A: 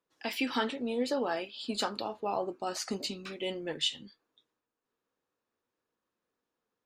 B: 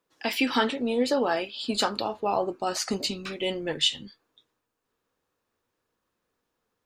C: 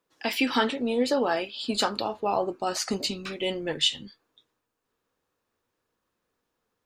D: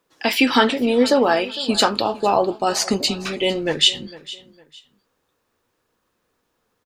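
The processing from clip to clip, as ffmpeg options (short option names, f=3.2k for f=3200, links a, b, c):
-af "asubboost=boost=2:cutoff=140,volume=7dB"
-af anull
-af "aecho=1:1:456|912:0.119|0.0345,volume=8.5dB"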